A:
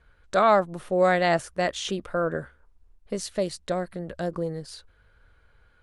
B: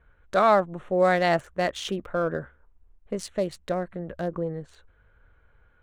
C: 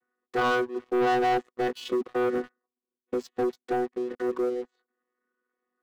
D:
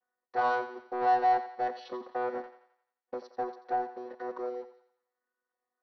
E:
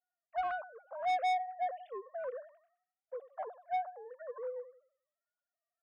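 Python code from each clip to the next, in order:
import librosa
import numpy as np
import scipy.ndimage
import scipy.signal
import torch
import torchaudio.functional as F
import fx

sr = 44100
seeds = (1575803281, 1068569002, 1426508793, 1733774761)

y1 = fx.wiener(x, sr, points=9)
y2 = fx.chord_vocoder(y1, sr, chord='bare fifth', root=59)
y2 = fx.peak_eq(y2, sr, hz=2700.0, db=-4.0, octaves=0.2)
y2 = fx.leveller(y2, sr, passes=3)
y2 = y2 * 10.0 ** (-8.0 / 20.0)
y3 = scipy.signal.sosfilt(scipy.signal.cheby1(6, 9, 5900.0, 'lowpass', fs=sr, output='sos'), y2)
y3 = fx.band_shelf(y3, sr, hz=720.0, db=14.0, octaves=1.1)
y3 = fx.echo_thinned(y3, sr, ms=87, feedback_pct=51, hz=510.0, wet_db=-11.0)
y3 = y3 * 10.0 ** (-5.5 / 20.0)
y4 = fx.sine_speech(y3, sr)
y4 = 10.0 ** (-28.0 / 20.0) * np.tanh(y4 / 10.0 ** (-28.0 / 20.0))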